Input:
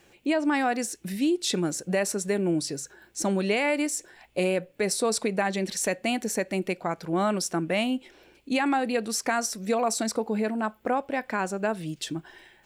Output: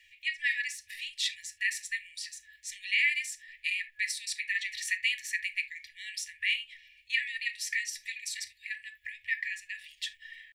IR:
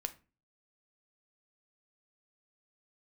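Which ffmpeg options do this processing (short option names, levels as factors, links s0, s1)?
-filter_complex "[0:a]atempo=1.2,acrossover=split=490 3500:gain=0.158 1 0.2[s0][s1][s2];[s0][s1][s2]amix=inputs=3:normalize=0[s3];[1:a]atrim=start_sample=2205,atrim=end_sample=3969[s4];[s3][s4]afir=irnorm=-1:irlink=0,afftfilt=real='re*(1-between(b*sr/4096,100,1700))':imag='im*(1-between(b*sr/4096,100,1700))':win_size=4096:overlap=0.75,volume=2"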